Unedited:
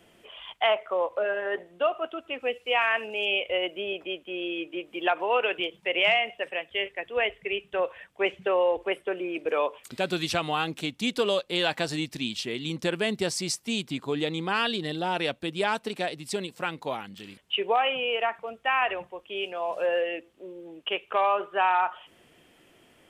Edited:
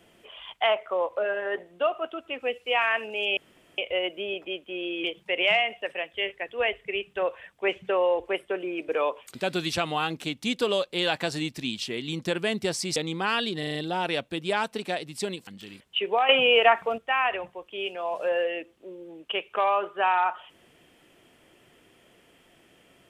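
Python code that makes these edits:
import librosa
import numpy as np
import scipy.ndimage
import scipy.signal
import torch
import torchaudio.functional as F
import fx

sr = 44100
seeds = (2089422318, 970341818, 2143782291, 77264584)

y = fx.edit(x, sr, fx.insert_room_tone(at_s=3.37, length_s=0.41),
    fx.cut(start_s=4.63, length_s=0.98),
    fx.cut(start_s=13.53, length_s=0.7),
    fx.stutter(start_s=14.86, slice_s=0.04, count=5),
    fx.cut(start_s=16.58, length_s=0.46),
    fx.clip_gain(start_s=17.86, length_s=0.69, db=8.5), tone=tone)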